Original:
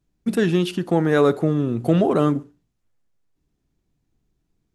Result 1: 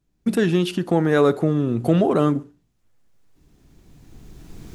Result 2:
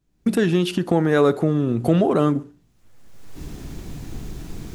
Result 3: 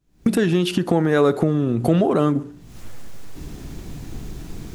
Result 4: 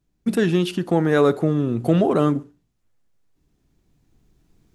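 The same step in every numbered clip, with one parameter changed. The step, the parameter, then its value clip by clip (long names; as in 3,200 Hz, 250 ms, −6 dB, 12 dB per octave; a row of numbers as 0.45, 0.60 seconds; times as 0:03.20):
camcorder AGC, rising by: 14, 35, 86, 5.3 dB per second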